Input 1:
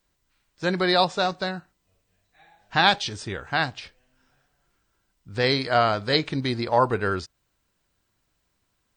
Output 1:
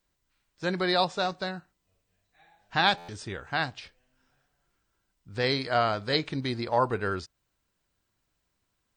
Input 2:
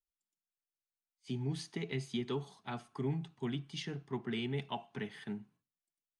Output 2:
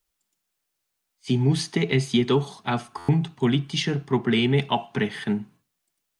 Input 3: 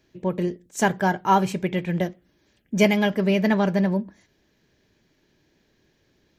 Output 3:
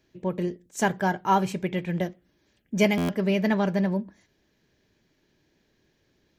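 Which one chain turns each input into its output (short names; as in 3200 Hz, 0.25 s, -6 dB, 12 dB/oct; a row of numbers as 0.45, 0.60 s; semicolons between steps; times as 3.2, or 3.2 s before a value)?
stuck buffer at 2.97, samples 512, times 9; normalise peaks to -9 dBFS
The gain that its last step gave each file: -4.5, +16.0, -3.0 dB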